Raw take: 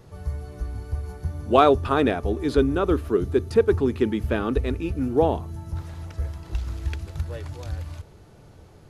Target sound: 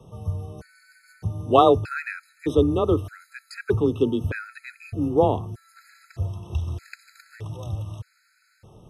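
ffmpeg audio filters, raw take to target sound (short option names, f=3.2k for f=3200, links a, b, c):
-af "afreqshift=22,afftfilt=real='re*gt(sin(2*PI*0.81*pts/sr)*(1-2*mod(floor(b*sr/1024/1300),2)),0)':imag='im*gt(sin(2*PI*0.81*pts/sr)*(1-2*mod(floor(b*sr/1024/1300),2)),0)':win_size=1024:overlap=0.75,volume=1dB"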